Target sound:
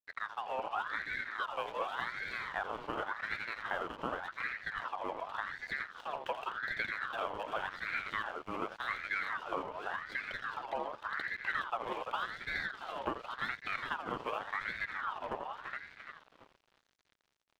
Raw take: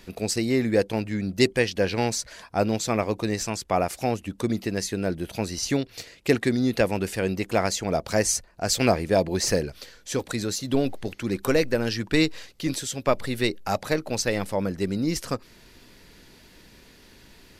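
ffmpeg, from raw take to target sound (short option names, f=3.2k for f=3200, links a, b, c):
-filter_complex "[0:a]asplit=2[a][b];[b]asplit=4[c][d][e][f];[c]adelay=336,afreqshift=78,volume=-11.5dB[g];[d]adelay=672,afreqshift=156,volume=-19.2dB[h];[e]adelay=1008,afreqshift=234,volume=-27dB[i];[f]adelay=1344,afreqshift=312,volume=-34.7dB[j];[g][h][i][j]amix=inputs=4:normalize=0[k];[a][k]amix=inputs=2:normalize=0,acompressor=threshold=-29dB:ratio=6,equalizer=f=1.3k:t=o:w=0.67:g=-8.5,asplit=2[l][m];[m]aecho=0:1:84|416:0.355|0.596[n];[l][n]amix=inputs=2:normalize=0,highpass=f=280:t=q:w=0.5412,highpass=f=280:t=q:w=1.307,lowpass=f=2.7k:t=q:w=0.5176,lowpass=f=2.7k:t=q:w=0.7071,lowpass=f=2.7k:t=q:w=1.932,afreqshift=-200,aeval=exprs='sgn(val(0))*max(abs(val(0))-0.00335,0)':c=same,aeval=exprs='val(0)*sin(2*PI*1300*n/s+1300*0.45/0.88*sin(2*PI*0.88*n/s))':c=same"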